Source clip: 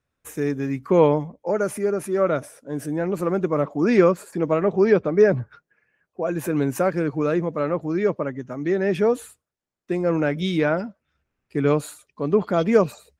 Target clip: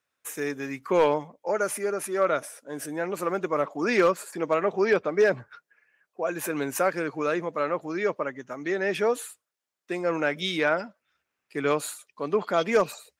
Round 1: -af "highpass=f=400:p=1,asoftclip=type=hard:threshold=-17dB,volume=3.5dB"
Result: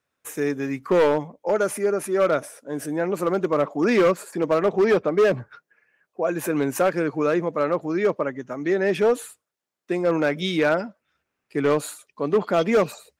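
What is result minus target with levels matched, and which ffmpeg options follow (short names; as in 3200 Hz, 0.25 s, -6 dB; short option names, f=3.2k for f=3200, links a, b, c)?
1000 Hz band -2.5 dB
-af "highpass=f=1.1k:p=1,asoftclip=type=hard:threshold=-17dB,volume=3.5dB"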